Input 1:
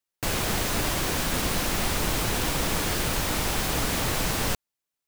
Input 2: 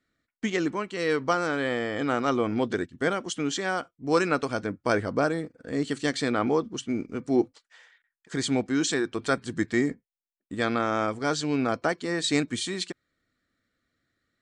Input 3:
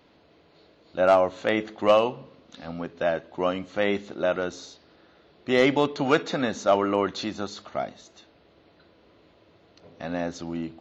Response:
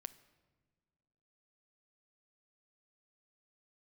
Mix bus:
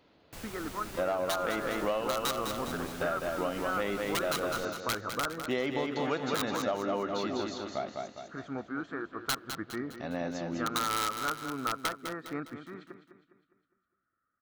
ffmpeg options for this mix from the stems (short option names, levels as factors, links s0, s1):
-filter_complex "[0:a]adelay=100,volume=0.119[s0];[1:a]lowpass=f=1300:t=q:w=8.2,aeval=exprs='(mod(2.51*val(0)+1,2)-1)/2.51':c=same,volume=0.211,asplit=3[s1][s2][s3];[s2]volume=0.075[s4];[s3]volume=0.316[s5];[2:a]volume=0.562,asplit=2[s6][s7];[s7]volume=0.596[s8];[3:a]atrim=start_sample=2205[s9];[s4][s9]afir=irnorm=-1:irlink=0[s10];[s5][s8]amix=inputs=2:normalize=0,aecho=0:1:204|408|612|816|1020|1224:1|0.45|0.202|0.0911|0.041|0.0185[s11];[s0][s1][s6][s10][s11]amix=inputs=5:normalize=0,acompressor=threshold=0.0447:ratio=10"